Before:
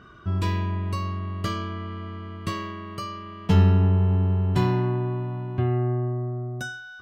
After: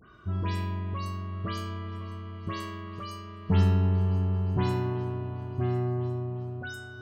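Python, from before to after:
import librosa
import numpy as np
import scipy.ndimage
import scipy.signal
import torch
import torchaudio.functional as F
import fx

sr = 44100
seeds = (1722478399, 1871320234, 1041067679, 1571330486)

y = fx.spec_delay(x, sr, highs='late', ms=136)
y = fx.echo_swing(y, sr, ms=1408, ratio=3, feedback_pct=35, wet_db=-16)
y = y * librosa.db_to_amplitude(-5.0)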